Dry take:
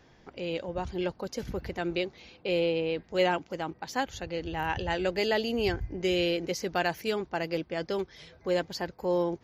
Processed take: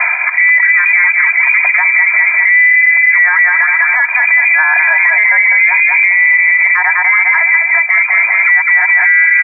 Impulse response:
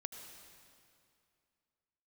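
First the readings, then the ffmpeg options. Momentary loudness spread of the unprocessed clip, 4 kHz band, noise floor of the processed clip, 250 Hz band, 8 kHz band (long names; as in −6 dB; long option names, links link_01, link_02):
9 LU, below −20 dB, −15 dBFS, below −30 dB, below −10 dB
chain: -af "lowpass=frequency=2100:width_type=q:width=0.5098,lowpass=frequency=2100:width_type=q:width=0.6013,lowpass=frequency=2100:width_type=q:width=0.9,lowpass=frequency=2100:width_type=q:width=2.563,afreqshift=-2500,areverse,acompressor=mode=upward:threshold=-32dB:ratio=2.5,areverse,highpass=frequency=860:width=0.5412,highpass=frequency=860:width=1.3066,aecho=1:1:201|402|603|804|1005:0.447|0.183|0.0751|0.0308|0.0126,acompressor=threshold=-35dB:ratio=12,aecho=1:1:3:0.78,alimiter=level_in=35dB:limit=-1dB:release=50:level=0:latency=1,volume=-1dB"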